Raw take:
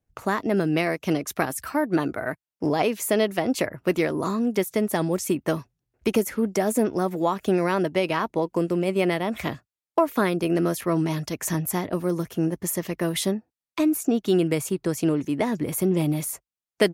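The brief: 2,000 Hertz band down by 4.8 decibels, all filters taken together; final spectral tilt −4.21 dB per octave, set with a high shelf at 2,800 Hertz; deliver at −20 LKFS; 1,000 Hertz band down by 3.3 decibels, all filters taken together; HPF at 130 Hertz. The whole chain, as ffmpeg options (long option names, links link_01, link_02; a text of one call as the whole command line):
ffmpeg -i in.wav -af "highpass=130,equalizer=frequency=1000:width_type=o:gain=-3.5,equalizer=frequency=2000:width_type=o:gain=-7.5,highshelf=frequency=2800:gain=6.5,volume=5dB" out.wav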